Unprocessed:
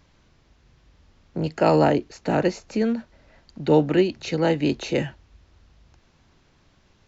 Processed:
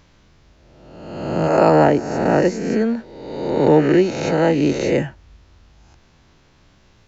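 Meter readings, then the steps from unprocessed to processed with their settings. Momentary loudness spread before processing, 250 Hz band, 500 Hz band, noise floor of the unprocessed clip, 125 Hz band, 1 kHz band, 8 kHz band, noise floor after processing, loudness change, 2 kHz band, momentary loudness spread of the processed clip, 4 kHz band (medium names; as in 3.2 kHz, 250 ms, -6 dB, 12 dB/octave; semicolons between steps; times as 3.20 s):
12 LU, +5.5 dB, +6.0 dB, -60 dBFS, +4.5 dB, +6.5 dB, no reading, -54 dBFS, +5.5 dB, +5.5 dB, 14 LU, +1.0 dB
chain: reverse spectral sustain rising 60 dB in 1.24 s; dynamic bell 3.5 kHz, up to -8 dB, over -45 dBFS, Q 1.2; trim +3 dB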